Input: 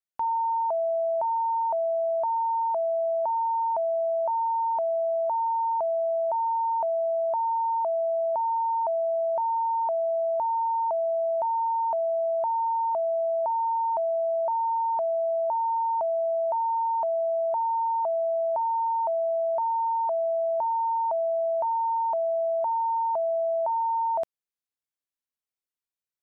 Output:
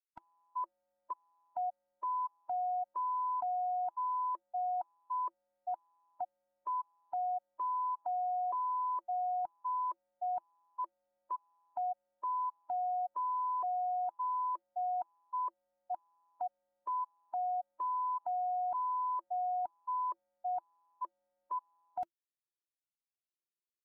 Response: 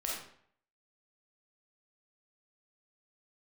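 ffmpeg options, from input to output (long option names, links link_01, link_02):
-af "asetrate=48510,aresample=44100,equalizer=frequency=340:width_type=o:width=0.21:gain=14.5,afftfilt=real='re*gt(sin(2*PI*0.88*pts/sr)*(1-2*mod(floor(b*sr/1024/320),2)),0)':imag='im*gt(sin(2*PI*0.88*pts/sr)*(1-2*mod(floor(b*sr/1024/320),2)),0)':win_size=1024:overlap=0.75,volume=-8.5dB"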